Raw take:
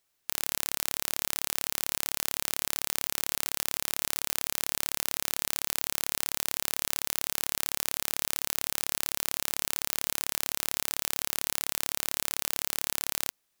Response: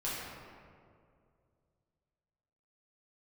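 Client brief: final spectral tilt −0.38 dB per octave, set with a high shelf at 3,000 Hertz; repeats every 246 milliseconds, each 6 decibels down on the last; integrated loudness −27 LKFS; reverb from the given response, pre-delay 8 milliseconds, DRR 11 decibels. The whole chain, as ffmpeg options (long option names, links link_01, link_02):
-filter_complex "[0:a]highshelf=frequency=3000:gain=-3.5,aecho=1:1:246|492|738|984|1230|1476:0.501|0.251|0.125|0.0626|0.0313|0.0157,asplit=2[link_01][link_02];[1:a]atrim=start_sample=2205,adelay=8[link_03];[link_02][link_03]afir=irnorm=-1:irlink=0,volume=-16dB[link_04];[link_01][link_04]amix=inputs=2:normalize=0,volume=4.5dB"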